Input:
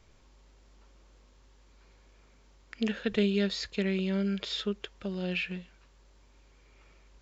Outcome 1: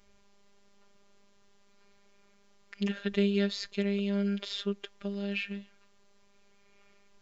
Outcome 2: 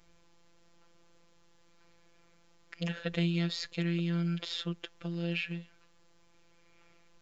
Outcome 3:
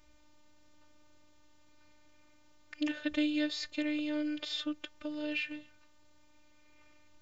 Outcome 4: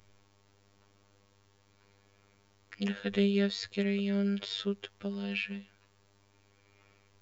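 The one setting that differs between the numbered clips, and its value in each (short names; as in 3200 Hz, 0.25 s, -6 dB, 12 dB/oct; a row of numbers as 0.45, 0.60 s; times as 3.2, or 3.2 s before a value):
robotiser, frequency: 200, 170, 300, 100 Hz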